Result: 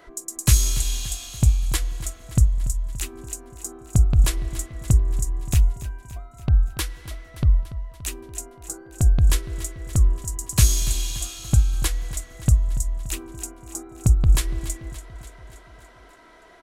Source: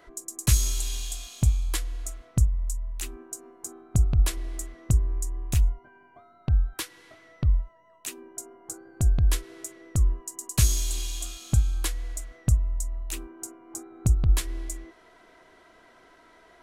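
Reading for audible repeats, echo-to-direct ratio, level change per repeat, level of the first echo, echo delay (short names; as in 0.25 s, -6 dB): 5, -12.5 dB, -4.5 dB, -14.5 dB, 0.287 s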